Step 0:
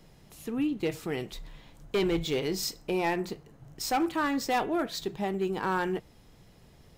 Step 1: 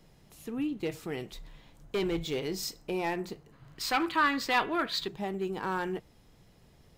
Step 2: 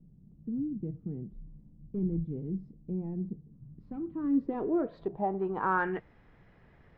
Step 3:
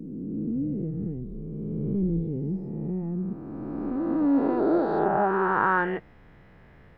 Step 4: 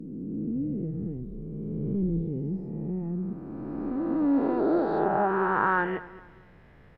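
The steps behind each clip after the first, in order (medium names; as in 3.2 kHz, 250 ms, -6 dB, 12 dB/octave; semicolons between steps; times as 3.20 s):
time-frequency box 3.52–5.08 s, 930–5000 Hz +9 dB; trim -3.5 dB
low-pass sweep 200 Hz -> 1.8 kHz, 4.03–5.99 s
reverse spectral sustain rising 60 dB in 2.78 s; trim +3 dB
feedback delay 221 ms, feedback 33%, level -18 dB; trim -1.5 dB; AAC 64 kbps 32 kHz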